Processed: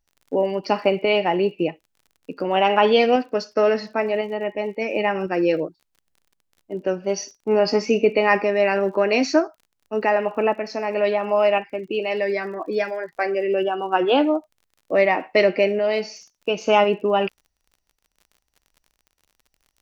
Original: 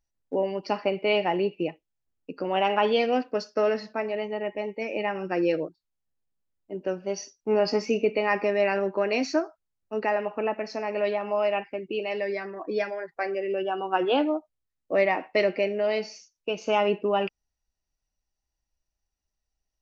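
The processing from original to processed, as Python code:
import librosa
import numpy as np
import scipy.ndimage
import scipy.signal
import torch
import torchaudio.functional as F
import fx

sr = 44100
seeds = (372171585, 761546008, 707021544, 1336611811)

y = fx.tremolo_shape(x, sr, shape='saw_up', hz=0.95, depth_pct=35)
y = fx.dmg_crackle(y, sr, seeds[0], per_s=38.0, level_db=-49.0)
y = y * librosa.db_to_amplitude(7.5)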